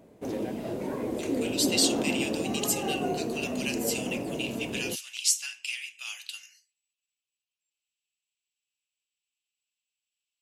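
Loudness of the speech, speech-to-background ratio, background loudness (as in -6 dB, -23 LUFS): -30.5 LUFS, 1.5 dB, -32.0 LUFS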